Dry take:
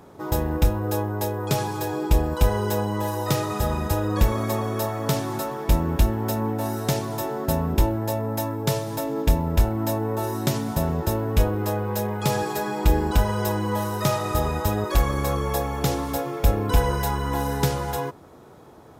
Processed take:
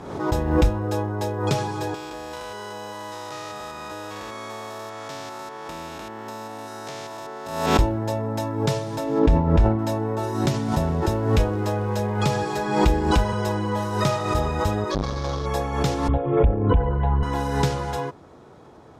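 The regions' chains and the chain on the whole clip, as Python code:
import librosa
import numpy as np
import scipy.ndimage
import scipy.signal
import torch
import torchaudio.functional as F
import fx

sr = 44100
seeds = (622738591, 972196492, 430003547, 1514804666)

y = fx.chain(x, sr, fx.spec_steps(hold_ms=200),
    fx.highpass(hz=1300.0, slope=6),
    fx.band_squash(depth_pct=100), at=(1.94, 7.79))
y = fx.chain(y, sr, fx.lowpass(hz=1800.0, slope=6),
    fx.sustainer(db_per_s=67.0), at=(9.19, 9.79))
y = fx.chain(y, sr, fx.quant_float(bits=4),
    fx.band_squash(depth_pct=40), at=(10.45, 13.33))
y = fx.chain(y, sr, fx.median_filter(points=15),
    fx.band_shelf(hz=4700.0, db=11.5, octaves=1.1),
    fx.transformer_sat(knee_hz=420.0), at=(14.91, 15.46))
y = fx.chain(y, sr, fx.envelope_sharpen(power=1.5),
    fx.steep_lowpass(hz=3400.0, slope=72),
    fx.band_squash(depth_pct=100), at=(16.08, 17.23))
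y = scipy.signal.sosfilt(scipy.signal.butter(2, 6900.0, 'lowpass', fs=sr, output='sos'), y)
y = fx.pre_swell(y, sr, db_per_s=61.0)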